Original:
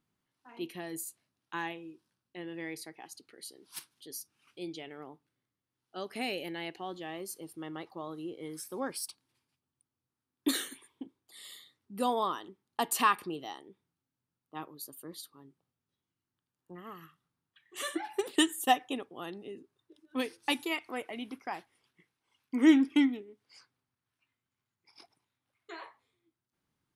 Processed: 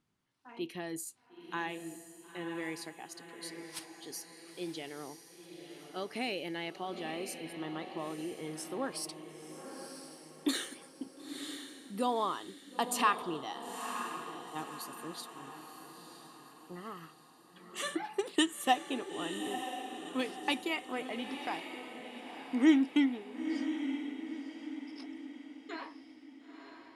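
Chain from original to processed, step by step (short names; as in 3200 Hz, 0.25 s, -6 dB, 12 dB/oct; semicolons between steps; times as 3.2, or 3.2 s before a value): LPF 9500 Hz 12 dB/oct; in parallel at -1.5 dB: compressor, threshold -38 dBFS, peak gain reduction 20 dB; on the sum: diffused feedback echo 0.958 s, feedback 46%, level -8 dB; gain -3.5 dB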